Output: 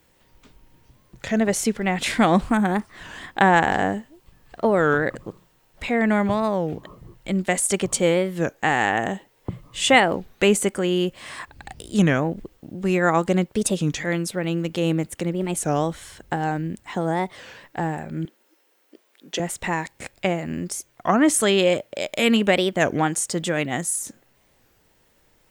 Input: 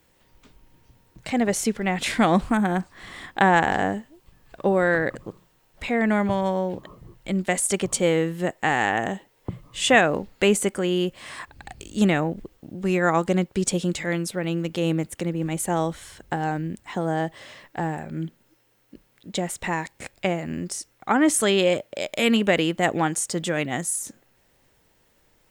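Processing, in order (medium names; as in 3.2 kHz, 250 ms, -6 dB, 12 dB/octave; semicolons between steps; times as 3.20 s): 18.25–19.40 s: high-pass 300 Hz 24 dB/octave; warped record 33 1/3 rpm, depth 250 cents; trim +1.5 dB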